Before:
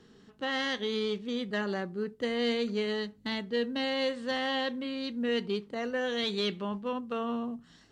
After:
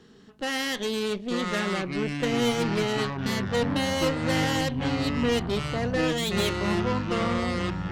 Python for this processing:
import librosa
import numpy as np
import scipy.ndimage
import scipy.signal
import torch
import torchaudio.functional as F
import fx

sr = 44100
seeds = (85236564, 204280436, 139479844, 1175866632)

y = fx.cheby_harmonics(x, sr, harmonics=(2, 8), levels_db=(-7, -18), full_scale_db=-19.5)
y = fx.echo_pitch(y, sr, ms=681, semitones=-7, count=3, db_per_echo=-3.0)
y = y * librosa.db_to_amplitude(4.0)